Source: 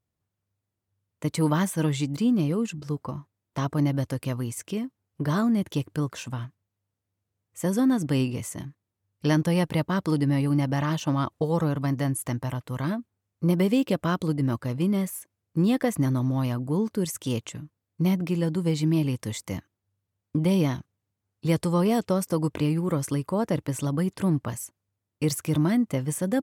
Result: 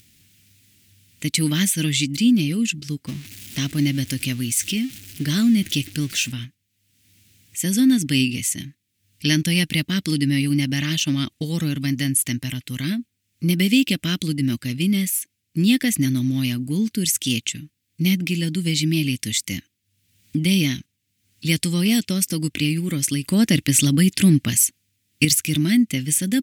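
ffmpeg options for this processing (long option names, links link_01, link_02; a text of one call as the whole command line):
ffmpeg -i in.wav -filter_complex "[0:a]asettb=1/sr,asplit=3[link_01][link_02][link_03];[link_01]atrim=end=3.074[link_04];[link_02]atrim=start=3.07:end=6.32,asetpts=PTS-STARTPTS,afade=type=in:duration=0.004:curve=qsin,afade=type=out:start_time=3.246:duration=0.004:curve=qsin,aeval=exprs='val(0)+0.5*0.00944*sgn(val(0))':channel_layout=same[link_05];[link_03]atrim=start=6.316[link_06];[link_04][link_05]acrossfade=duration=0.004:curve1=hsin:curve2=qsin[link_07];[link_07][link_06]acrossfade=duration=0.004:curve1=qsin:curve2=hsin,asettb=1/sr,asplit=3[link_08][link_09][link_10];[link_08]atrim=end=23.234[link_11];[link_09]atrim=start=23.23:end=25.25,asetpts=PTS-STARTPTS,afade=type=in:duration=0.004:curve=qsin,afade=type=out:start_time=2.016:duration=0.004:curve=qsin,acontrast=61[link_12];[link_10]atrim=start=25.246[link_13];[link_11][link_12]acrossfade=duration=0.004:curve1=hsin:curve2=qsin[link_14];[link_14][link_13]acrossfade=duration=0.004:curve1=qsin:curve2=hsin,highshelf=frequency=1600:width_type=q:width=1.5:gain=13.5,acompressor=mode=upward:threshold=-38dB:ratio=2.5,equalizer=frequency=250:width_type=o:width=1:gain=9,equalizer=frequency=500:width_type=o:width=1:gain=-9,equalizer=frequency=1000:width_type=o:width=1:gain=-11" out.wav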